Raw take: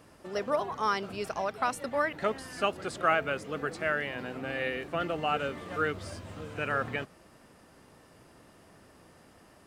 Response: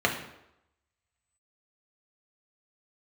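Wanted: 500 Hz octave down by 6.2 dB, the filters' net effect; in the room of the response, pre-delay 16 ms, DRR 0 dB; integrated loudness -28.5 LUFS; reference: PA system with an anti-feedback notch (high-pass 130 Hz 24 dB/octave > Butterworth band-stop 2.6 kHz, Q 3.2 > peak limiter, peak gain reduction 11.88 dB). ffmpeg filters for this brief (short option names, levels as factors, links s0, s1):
-filter_complex "[0:a]equalizer=f=500:t=o:g=-8,asplit=2[s0][s1];[1:a]atrim=start_sample=2205,adelay=16[s2];[s1][s2]afir=irnorm=-1:irlink=0,volume=0.2[s3];[s0][s3]amix=inputs=2:normalize=0,highpass=f=130:w=0.5412,highpass=f=130:w=1.3066,asuperstop=centerf=2600:order=8:qfactor=3.2,volume=2.24,alimiter=limit=0.126:level=0:latency=1"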